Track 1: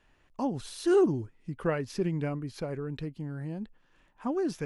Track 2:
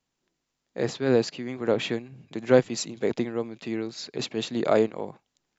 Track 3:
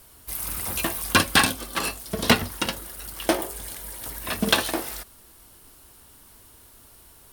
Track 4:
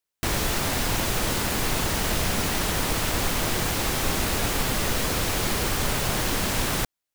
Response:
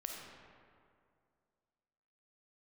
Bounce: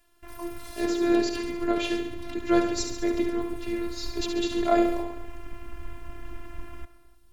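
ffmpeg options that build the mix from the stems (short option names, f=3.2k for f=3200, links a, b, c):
-filter_complex "[0:a]volume=-1.5dB[a];[1:a]volume=2.5dB,asplit=2[b][c];[c]volume=-7dB[d];[2:a]highshelf=f=7.3k:g=-12,acompressor=threshold=-29dB:ratio=2.5,volume=-9dB[e];[3:a]afwtdn=0.0355,adynamicequalizer=threshold=0.00794:dfrequency=1000:dqfactor=0.87:tfrequency=1000:tqfactor=0.87:attack=5:release=100:ratio=0.375:range=1.5:mode=boostabove:tftype=bell,volume=-18.5dB,asplit=2[f][g];[g]volume=-6dB[h];[a][e][f]amix=inputs=3:normalize=0,asubboost=boost=5.5:cutoff=240,alimiter=limit=-20.5dB:level=0:latency=1:release=176,volume=0dB[i];[4:a]atrim=start_sample=2205[j];[h][j]afir=irnorm=-1:irlink=0[k];[d]aecho=0:1:70|140|210|280|350|420|490|560|630:1|0.58|0.336|0.195|0.113|0.0656|0.0381|0.0221|0.0128[l];[b][i][k][l]amix=inputs=4:normalize=0,afftfilt=real='hypot(re,im)*cos(PI*b)':imag='0':win_size=512:overlap=0.75"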